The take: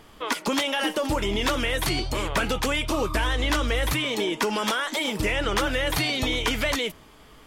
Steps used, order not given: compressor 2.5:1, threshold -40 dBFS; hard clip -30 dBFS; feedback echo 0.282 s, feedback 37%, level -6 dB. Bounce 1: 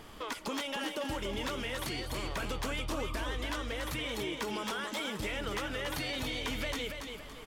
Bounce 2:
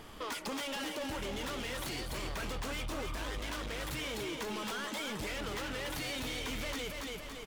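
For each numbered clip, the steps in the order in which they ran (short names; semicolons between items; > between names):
compressor > hard clip > feedback echo; hard clip > feedback echo > compressor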